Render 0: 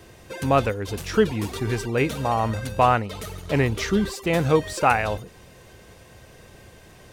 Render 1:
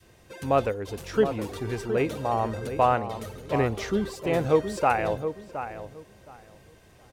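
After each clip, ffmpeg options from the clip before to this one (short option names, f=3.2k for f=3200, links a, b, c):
-filter_complex "[0:a]asplit=2[a][b];[b]adelay=719,lowpass=f=1.5k:p=1,volume=-8.5dB,asplit=2[c][d];[d]adelay=719,lowpass=f=1.5k:p=1,volume=0.26,asplit=2[e][f];[f]adelay=719,lowpass=f=1.5k:p=1,volume=0.26[g];[a][c][e][g]amix=inputs=4:normalize=0,adynamicequalizer=threshold=0.0282:dfrequency=530:dqfactor=0.7:tfrequency=530:tqfactor=0.7:attack=5:release=100:ratio=0.375:range=3.5:mode=boostabove:tftype=bell,volume=-8dB"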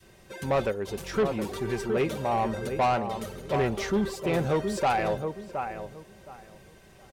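-af "aecho=1:1:5.2:0.43,asoftclip=type=tanh:threshold=-20dB,volume=1dB"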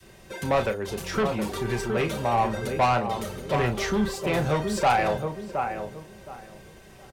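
-filter_complex "[0:a]acrossover=split=220|520|5600[a][b][c][d];[b]acompressor=threshold=-39dB:ratio=6[e];[a][e][c][d]amix=inputs=4:normalize=0,asplit=2[f][g];[g]adelay=33,volume=-8.5dB[h];[f][h]amix=inputs=2:normalize=0,volume=4dB"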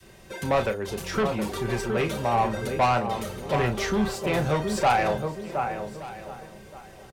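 -af "aecho=1:1:1173:0.126"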